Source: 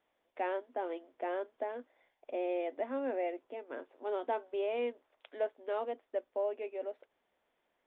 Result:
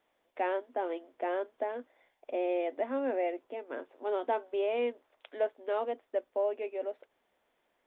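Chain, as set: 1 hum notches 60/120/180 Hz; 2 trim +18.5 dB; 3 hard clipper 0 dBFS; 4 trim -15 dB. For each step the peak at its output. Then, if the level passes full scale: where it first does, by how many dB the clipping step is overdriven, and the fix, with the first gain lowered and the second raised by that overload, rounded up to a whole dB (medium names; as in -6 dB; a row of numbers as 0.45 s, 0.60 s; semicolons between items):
-23.0 dBFS, -4.5 dBFS, -4.5 dBFS, -19.5 dBFS; nothing clips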